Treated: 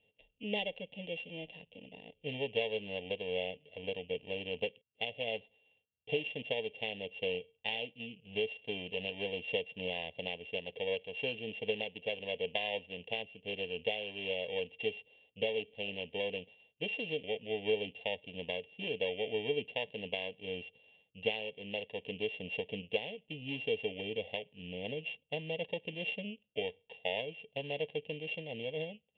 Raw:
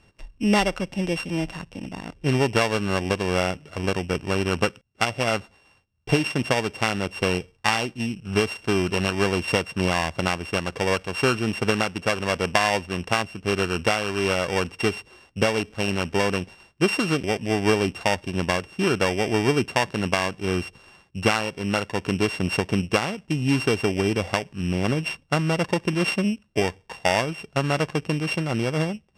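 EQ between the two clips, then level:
pair of resonant band-passes 1,200 Hz, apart 2.9 octaves
high-frequency loss of the air 330 metres
phaser with its sweep stopped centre 1,400 Hz, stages 6
+5.5 dB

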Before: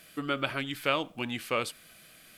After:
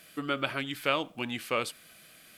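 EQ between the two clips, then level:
low-shelf EQ 63 Hz −9 dB
0.0 dB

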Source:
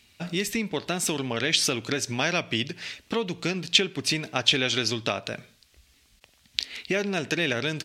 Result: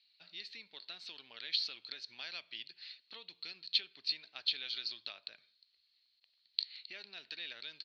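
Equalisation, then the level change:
resonant band-pass 4,300 Hz, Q 16
high-frequency loss of the air 350 metres
+12.0 dB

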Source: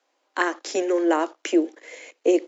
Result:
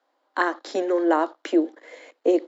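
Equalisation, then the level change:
graphic EQ with 15 bands 400 Hz −5 dB, 2,500 Hz −10 dB, 6,300 Hz −10 dB
dynamic equaliser 4,000 Hz, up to +6 dB, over −59 dBFS, Q 4.6
high-shelf EQ 6,700 Hz −11 dB
+3.0 dB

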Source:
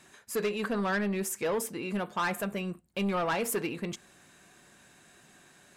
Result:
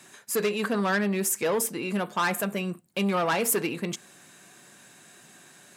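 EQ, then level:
high-pass filter 110 Hz 24 dB per octave
high-shelf EQ 5,500 Hz +6 dB
+4.0 dB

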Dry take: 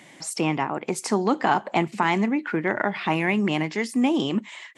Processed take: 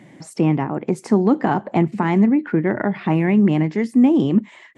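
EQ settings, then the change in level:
tilt shelving filter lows +9.5 dB, about 750 Hz
low-shelf EQ 130 Hz +4.5 dB
parametric band 1,800 Hz +4.5 dB 0.7 octaves
0.0 dB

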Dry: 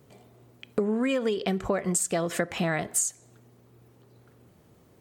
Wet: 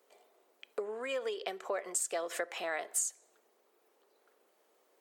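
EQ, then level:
high-pass filter 430 Hz 24 dB per octave
−6.5 dB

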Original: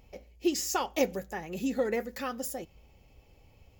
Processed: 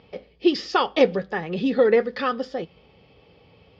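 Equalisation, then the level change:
high-frequency loss of the air 330 metres
loudspeaker in its box 120–5,500 Hz, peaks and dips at 170 Hz +6 dB, 450 Hz +8 dB, 1,200 Hz +7 dB, 1,700 Hz +4 dB, 3,400 Hz +9 dB, 4,800 Hz +9 dB
high-shelf EQ 3,600 Hz +9 dB
+7.5 dB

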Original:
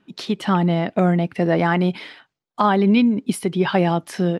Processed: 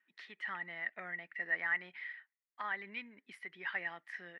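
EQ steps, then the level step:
resonant band-pass 1,900 Hz, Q 13
+1.0 dB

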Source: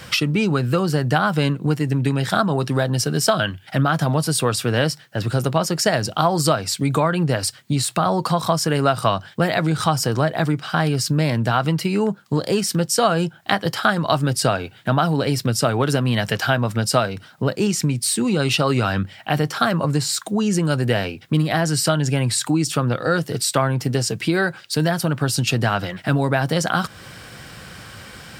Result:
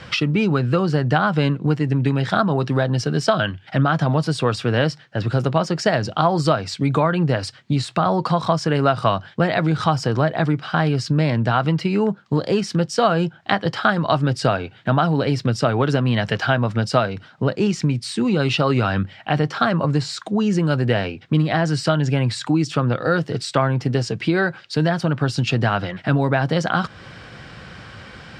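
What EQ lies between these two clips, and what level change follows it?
high-frequency loss of the air 140 metres
+1.0 dB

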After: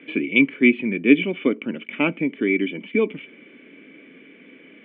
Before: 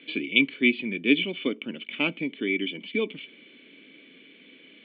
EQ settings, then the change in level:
low-pass filter 2,200 Hz 24 dB per octave
+7.5 dB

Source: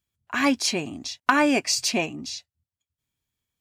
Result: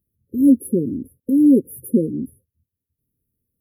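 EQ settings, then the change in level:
linear-phase brick-wall band-stop 540–10,000 Hz
parametric band 230 Hz +3.5 dB 0.8 octaves
+8.5 dB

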